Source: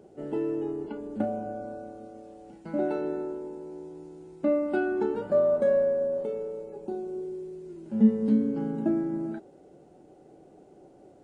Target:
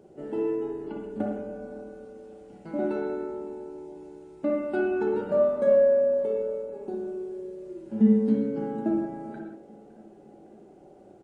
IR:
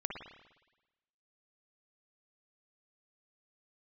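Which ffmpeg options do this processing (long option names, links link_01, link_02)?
-filter_complex "[0:a]aecho=1:1:560|1120|1680|2240:0.0794|0.0429|0.0232|0.0125[link_01];[1:a]atrim=start_sample=2205,afade=type=out:start_time=0.25:duration=0.01,atrim=end_sample=11466[link_02];[link_01][link_02]afir=irnorm=-1:irlink=0"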